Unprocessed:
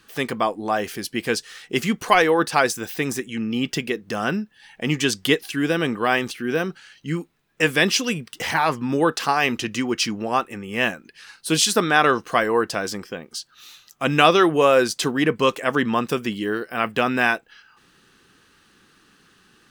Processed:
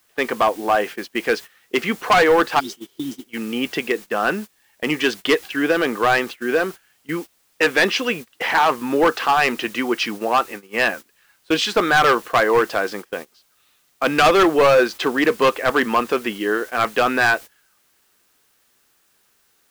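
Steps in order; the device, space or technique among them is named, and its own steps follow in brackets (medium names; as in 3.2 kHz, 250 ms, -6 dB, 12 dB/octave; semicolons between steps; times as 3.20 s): spectral replace 2.62–3.22 s, 360–3400 Hz after; aircraft radio (band-pass 360–2600 Hz; hard clipper -16.5 dBFS, distortion -9 dB; white noise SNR 23 dB; gate -36 dBFS, range -19 dB); trim +6.5 dB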